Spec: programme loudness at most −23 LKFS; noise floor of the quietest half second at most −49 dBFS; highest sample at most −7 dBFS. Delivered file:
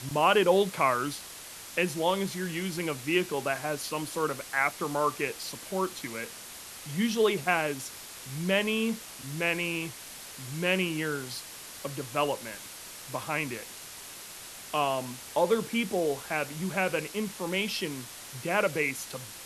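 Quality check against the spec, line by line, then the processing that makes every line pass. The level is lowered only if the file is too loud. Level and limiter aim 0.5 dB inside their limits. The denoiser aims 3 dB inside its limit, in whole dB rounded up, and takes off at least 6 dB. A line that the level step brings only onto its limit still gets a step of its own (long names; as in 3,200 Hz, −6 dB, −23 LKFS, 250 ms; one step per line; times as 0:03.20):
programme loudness −30.0 LKFS: in spec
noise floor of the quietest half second −45 dBFS: out of spec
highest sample −10.0 dBFS: in spec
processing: broadband denoise 7 dB, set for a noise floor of −45 dBFS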